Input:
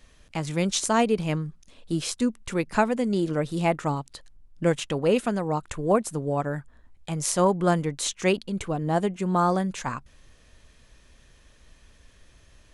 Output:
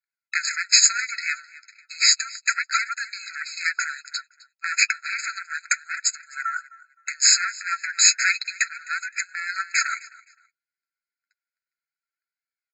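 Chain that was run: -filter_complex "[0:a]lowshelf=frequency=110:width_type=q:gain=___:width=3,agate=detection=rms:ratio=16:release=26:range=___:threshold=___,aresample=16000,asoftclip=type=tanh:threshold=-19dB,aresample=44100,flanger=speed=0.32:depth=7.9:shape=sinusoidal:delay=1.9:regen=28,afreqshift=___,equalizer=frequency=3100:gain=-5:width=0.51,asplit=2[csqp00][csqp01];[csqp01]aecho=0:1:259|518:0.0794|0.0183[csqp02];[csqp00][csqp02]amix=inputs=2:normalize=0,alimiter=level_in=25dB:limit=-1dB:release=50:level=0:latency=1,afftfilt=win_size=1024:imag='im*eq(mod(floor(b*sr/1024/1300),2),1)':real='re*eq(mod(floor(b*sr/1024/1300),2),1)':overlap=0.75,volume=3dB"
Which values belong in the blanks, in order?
-13.5, -50dB, -54dB, -370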